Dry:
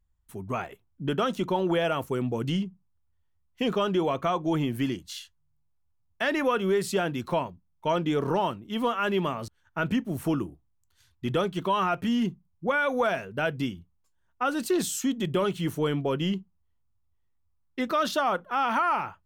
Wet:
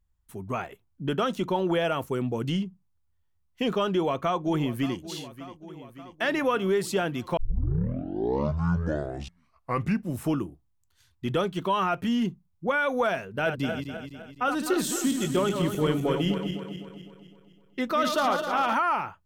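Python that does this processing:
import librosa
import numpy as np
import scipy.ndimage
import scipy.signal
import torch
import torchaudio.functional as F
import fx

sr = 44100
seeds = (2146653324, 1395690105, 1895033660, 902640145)

y = fx.echo_throw(x, sr, start_s=3.88, length_s=1.1, ms=580, feedback_pct=70, wet_db=-15.5)
y = fx.reverse_delay_fb(y, sr, ms=127, feedback_pct=69, wet_db=-6.0, at=(13.21, 18.74))
y = fx.edit(y, sr, fx.tape_start(start_s=7.37, length_s=3.0), tone=tone)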